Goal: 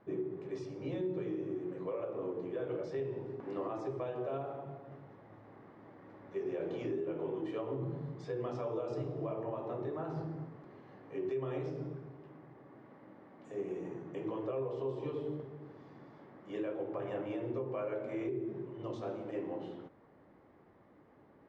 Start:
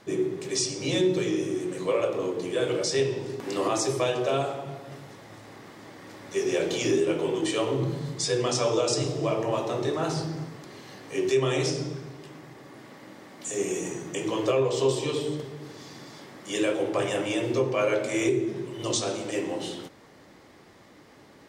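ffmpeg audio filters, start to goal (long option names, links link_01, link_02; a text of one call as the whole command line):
ffmpeg -i in.wav -af "lowpass=1300,alimiter=limit=-20.5dB:level=0:latency=1:release=152,volume=-8.5dB" out.wav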